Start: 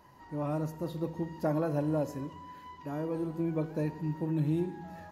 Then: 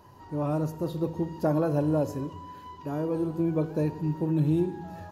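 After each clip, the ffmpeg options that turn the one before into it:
-af "equalizer=f=100:t=o:w=0.33:g=12,equalizer=f=400:t=o:w=0.33:g=5,equalizer=f=2k:t=o:w=0.33:g=-8,volume=4dB"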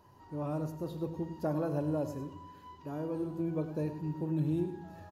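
-af "aecho=1:1:101:0.251,volume=-7.5dB"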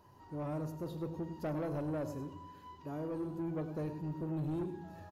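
-af "asoftclip=type=tanh:threshold=-31dB,volume=-1dB"

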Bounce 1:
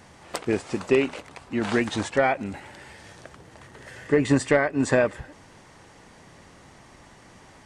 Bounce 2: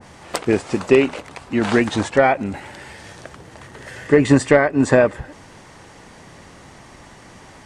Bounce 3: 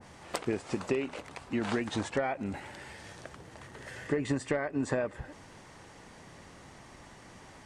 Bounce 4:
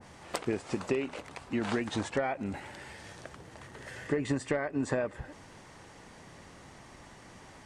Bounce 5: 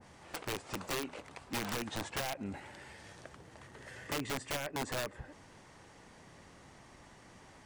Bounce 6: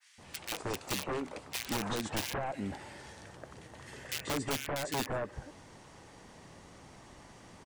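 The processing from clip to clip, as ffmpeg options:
-af "adynamicequalizer=threshold=0.0126:dfrequency=1600:dqfactor=0.7:tfrequency=1600:tqfactor=0.7:attack=5:release=100:ratio=0.375:range=2.5:mode=cutabove:tftype=highshelf,volume=7dB"
-af "acompressor=threshold=-19dB:ratio=5,volume=-8.5dB"
-af anull
-af "aeval=exprs='(mod(17.8*val(0)+1,2)-1)/17.8':c=same,volume=-5dB"
-filter_complex "[0:a]acrossover=split=1800[a][b];[a]adelay=180[c];[c][b]amix=inputs=2:normalize=0,volume=3.5dB"

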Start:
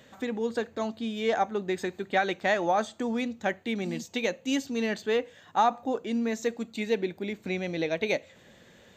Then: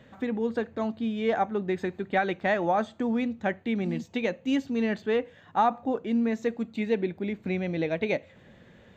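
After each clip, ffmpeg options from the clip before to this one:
-af "bass=f=250:g=6,treble=f=4k:g=-14"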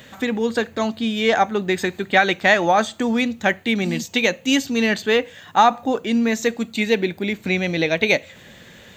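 -af "crystalizer=i=7.5:c=0,volume=6dB"

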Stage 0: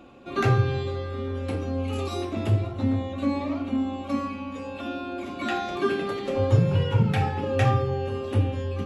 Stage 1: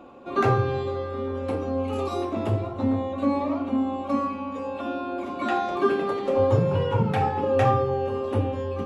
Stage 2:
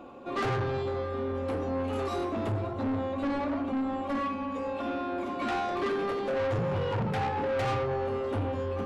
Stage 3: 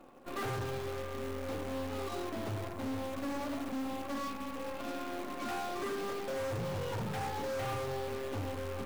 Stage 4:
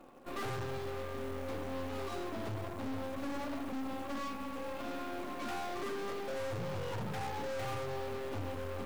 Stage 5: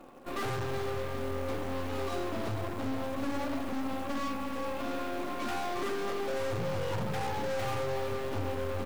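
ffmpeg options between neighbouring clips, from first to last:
-af "equalizer=f=250:t=o:w=1:g=4,equalizer=f=500:t=o:w=1:g=7,equalizer=f=1k:t=o:w=1:g=10,volume=-4.5dB"
-af "asoftclip=type=tanh:threshold=-26.5dB"
-af "acrusher=bits=5:mode=log:mix=0:aa=0.000001,aeval=exprs='0.0422*(cos(1*acos(clip(val(0)/0.0422,-1,1)))-cos(1*PI/2))+0.00422*(cos(3*acos(clip(val(0)/0.0422,-1,1)))-cos(3*PI/2))+0.0106*(cos(4*acos(clip(val(0)/0.0422,-1,1)))-cos(4*PI/2))':c=same,volume=-7.5dB"
-af "aeval=exprs='clip(val(0),-1,0.00841)':c=same"
-af "aecho=1:1:369:0.335,volume=4.5dB"

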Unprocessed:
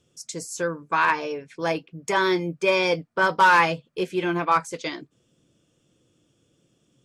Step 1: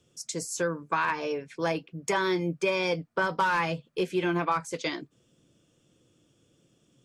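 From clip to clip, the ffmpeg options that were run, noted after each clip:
-filter_complex "[0:a]acrossover=split=190[a][b];[b]acompressor=threshold=-24dB:ratio=5[c];[a][c]amix=inputs=2:normalize=0"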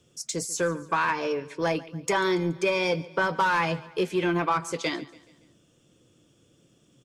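-filter_complex "[0:a]asplit=2[a][b];[b]asoftclip=type=tanh:threshold=-28dB,volume=-5.5dB[c];[a][c]amix=inputs=2:normalize=0,aecho=1:1:142|284|426|568:0.1|0.049|0.024|0.0118"

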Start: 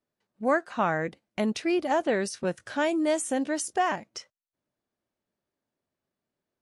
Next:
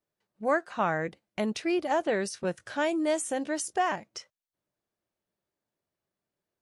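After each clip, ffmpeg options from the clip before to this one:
-af "equalizer=f=250:w=6.6:g=-8,volume=-1.5dB"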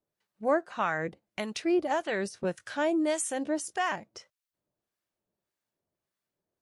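-filter_complex "[0:a]acrossover=split=1000[a][b];[a]aeval=exprs='val(0)*(1-0.7/2+0.7/2*cos(2*PI*1.7*n/s))':c=same[c];[b]aeval=exprs='val(0)*(1-0.7/2-0.7/2*cos(2*PI*1.7*n/s))':c=same[d];[c][d]amix=inputs=2:normalize=0,volume=2.5dB"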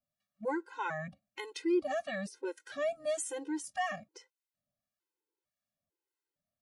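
-af "afftfilt=real='re*gt(sin(2*PI*1.1*pts/sr)*(1-2*mod(floor(b*sr/1024/270),2)),0)':imag='im*gt(sin(2*PI*1.1*pts/sr)*(1-2*mod(floor(b*sr/1024/270),2)),0)':win_size=1024:overlap=0.75,volume=-3dB"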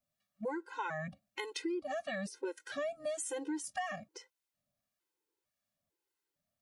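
-af "acompressor=threshold=-37dB:ratio=10,volume=3dB"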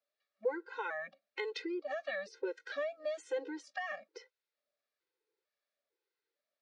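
-af "highpass=f=390:w=0.5412,highpass=f=390:w=1.3066,equalizer=f=460:t=q:w=4:g=7,equalizer=f=710:t=q:w=4:g=-7,equalizer=f=1k:t=q:w=4:g=-7,equalizer=f=3k:t=q:w=4:g=-6,lowpass=f=4.5k:w=0.5412,lowpass=f=4.5k:w=1.3066,volume=2.5dB"

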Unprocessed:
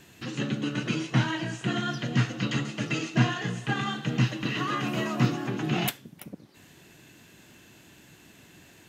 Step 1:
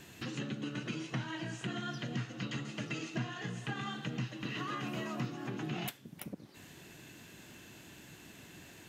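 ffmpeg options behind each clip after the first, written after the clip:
-af "acompressor=threshold=-39dB:ratio=3"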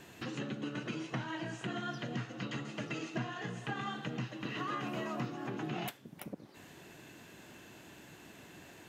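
-af "equalizer=f=710:t=o:w=2.8:g=7,volume=-3.5dB"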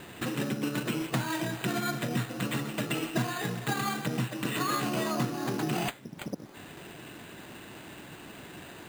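-af "acrusher=samples=8:mix=1:aa=0.000001,volume=8dB"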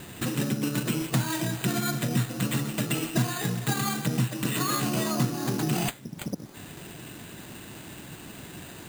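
-af "bass=f=250:g=7,treble=f=4k:g=8"

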